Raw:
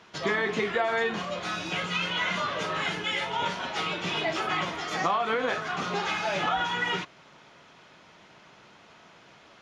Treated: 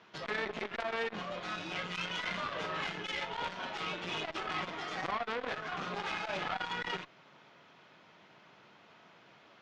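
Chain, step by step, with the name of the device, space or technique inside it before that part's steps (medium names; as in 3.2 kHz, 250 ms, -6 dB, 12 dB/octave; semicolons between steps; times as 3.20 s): valve radio (band-pass 99–4600 Hz; valve stage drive 21 dB, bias 0.65; transformer saturation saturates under 1.4 kHz); trim -2 dB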